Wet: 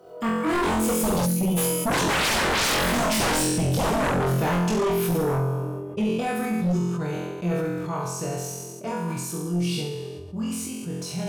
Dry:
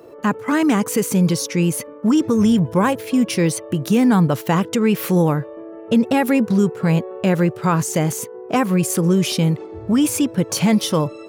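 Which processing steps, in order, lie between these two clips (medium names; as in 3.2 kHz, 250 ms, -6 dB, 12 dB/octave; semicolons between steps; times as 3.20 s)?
Doppler pass-by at 2.44 s, 33 m/s, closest 14 m; peaking EQ 2 kHz -8.5 dB 0.29 oct; comb of notches 270 Hz; flutter echo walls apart 3.9 m, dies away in 0.94 s; time-frequency box 1.26–1.57 s, 380–8800 Hz -14 dB; sine folder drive 10 dB, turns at -14.5 dBFS; decay stretcher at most 26 dB/s; trim -5 dB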